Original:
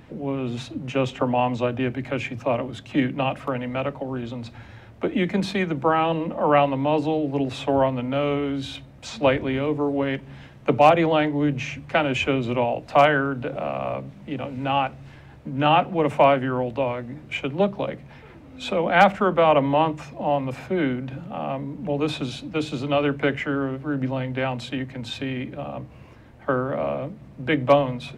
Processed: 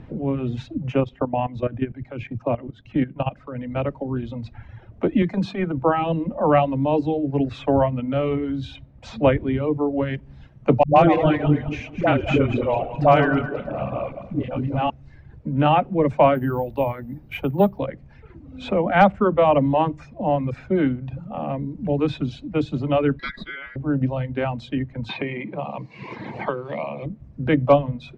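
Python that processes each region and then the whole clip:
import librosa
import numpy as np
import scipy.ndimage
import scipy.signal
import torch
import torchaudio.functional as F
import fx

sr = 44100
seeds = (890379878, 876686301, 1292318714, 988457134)

y = fx.chain(x, sr, fx.level_steps(step_db=11),
    fx.air_absorb(metres=71.0), at=(1.0, 3.76))
y = fx.chain(y, sr, fx.highpass(hz=110.0, slope=12),
    fx.transient(attack_db=-10, sustain_db=1), at=(5.22, 5.78))
y = fx.chain(y, sr, fx.reverse_delay_fb(ms=106, feedback_pct=63, wet_db=-5),
    fx.dispersion(late='highs', ms=127.0, hz=340.0), at=(10.83, 14.9))
y = fx.chain(y, sr, fx.resample_bad(factor=3, down='filtered', up='zero_stuff'),
    fx.peak_eq(hz=840.0, db=6.0, octaves=0.24), at=(16.35, 17.79))
y = fx.chain(y, sr, fx.peak_eq(hz=630.0, db=-6.0, octaves=2.6),
    fx.ring_mod(carrier_hz=1800.0), at=(23.19, 23.76))
y = fx.chain(y, sr, fx.cabinet(low_hz=160.0, low_slope=24, high_hz=7300.0, hz=(260.0, 580.0, 980.0, 1400.0, 2200.0, 4200.0), db=(-10, -4, 7, -8, 10, 7)),
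    fx.band_squash(depth_pct=100), at=(25.09, 27.06))
y = scipy.signal.sosfilt(scipy.signal.butter(2, 6100.0, 'lowpass', fs=sr, output='sos'), y)
y = fx.dereverb_blind(y, sr, rt60_s=1.2)
y = fx.tilt_eq(y, sr, slope=-2.5)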